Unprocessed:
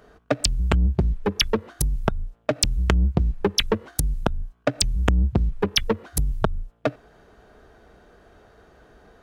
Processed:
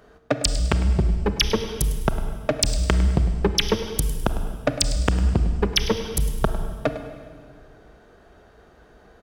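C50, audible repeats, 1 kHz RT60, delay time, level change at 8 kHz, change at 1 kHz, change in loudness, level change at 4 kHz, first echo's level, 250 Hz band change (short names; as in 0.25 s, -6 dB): 8.5 dB, 1, 1.8 s, 0.103 s, +0.5 dB, +0.5 dB, +1.0 dB, +0.5 dB, -14.5 dB, +1.0 dB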